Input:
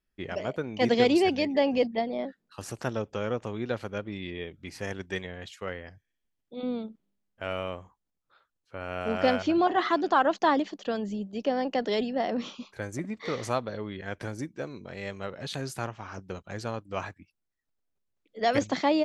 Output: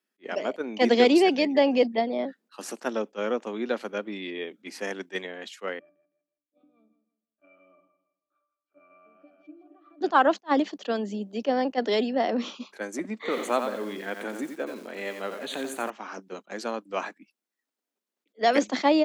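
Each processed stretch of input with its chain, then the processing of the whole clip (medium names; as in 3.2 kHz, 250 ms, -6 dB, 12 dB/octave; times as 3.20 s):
5.79–10.01 s: compression 8:1, threshold -38 dBFS + pitch-class resonator D, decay 0.23 s + feedback delay 161 ms, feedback 33%, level -12 dB
13.20–15.90 s: Butterworth band-stop 5.2 kHz, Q 2.1 + bit-crushed delay 88 ms, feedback 35%, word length 8-bit, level -6.5 dB
whole clip: steep high-pass 210 Hz 48 dB/octave; attacks held to a fixed rise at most 520 dB/s; trim +3.5 dB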